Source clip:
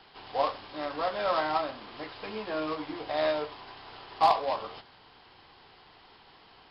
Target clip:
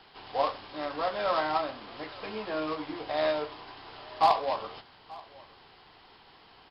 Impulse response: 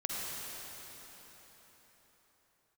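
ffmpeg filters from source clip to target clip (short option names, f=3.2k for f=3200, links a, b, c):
-af "aecho=1:1:882:0.075"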